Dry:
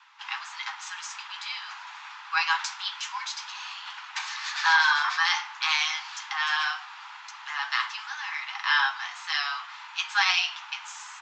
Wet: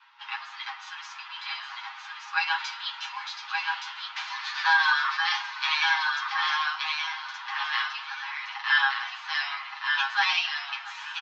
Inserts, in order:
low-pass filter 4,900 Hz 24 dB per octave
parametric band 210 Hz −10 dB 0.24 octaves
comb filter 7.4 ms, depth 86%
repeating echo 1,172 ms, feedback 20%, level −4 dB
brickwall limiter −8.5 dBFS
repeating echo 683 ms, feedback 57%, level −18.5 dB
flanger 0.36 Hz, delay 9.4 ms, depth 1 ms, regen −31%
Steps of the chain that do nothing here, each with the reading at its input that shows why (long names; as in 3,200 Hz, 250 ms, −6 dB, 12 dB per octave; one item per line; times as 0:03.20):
parametric band 210 Hz: nothing at its input below 720 Hz